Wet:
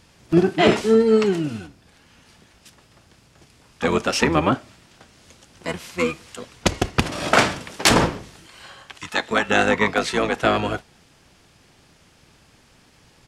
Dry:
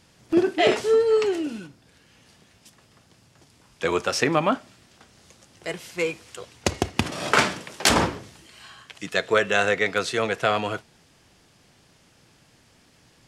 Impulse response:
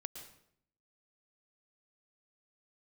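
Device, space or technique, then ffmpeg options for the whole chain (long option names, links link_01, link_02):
octave pedal: -filter_complex "[0:a]asplit=3[link_01][link_02][link_03];[link_01]afade=type=out:start_time=8.97:duration=0.02[link_04];[link_02]equalizer=frequency=240:width=0.48:gain=-10.5,afade=type=in:start_time=8.97:duration=0.02,afade=type=out:start_time=9.48:duration=0.02[link_05];[link_03]afade=type=in:start_time=9.48:duration=0.02[link_06];[link_04][link_05][link_06]amix=inputs=3:normalize=0,asplit=2[link_07][link_08];[link_08]asetrate=22050,aresample=44100,atempo=2,volume=-4dB[link_09];[link_07][link_09]amix=inputs=2:normalize=0,volume=2dB"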